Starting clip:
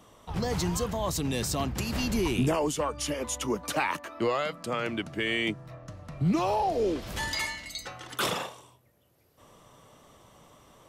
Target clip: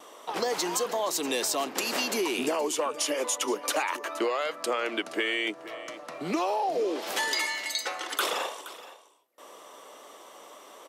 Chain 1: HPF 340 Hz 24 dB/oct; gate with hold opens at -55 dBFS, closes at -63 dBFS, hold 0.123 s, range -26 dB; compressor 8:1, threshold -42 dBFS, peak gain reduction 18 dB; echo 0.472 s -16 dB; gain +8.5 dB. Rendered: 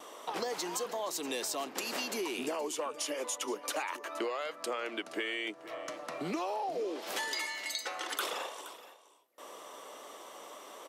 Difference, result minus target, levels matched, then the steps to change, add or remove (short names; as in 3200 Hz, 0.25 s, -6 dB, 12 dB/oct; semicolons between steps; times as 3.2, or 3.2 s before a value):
compressor: peak gain reduction +7.5 dB
change: compressor 8:1, threshold -33.5 dBFS, peak gain reduction 10.5 dB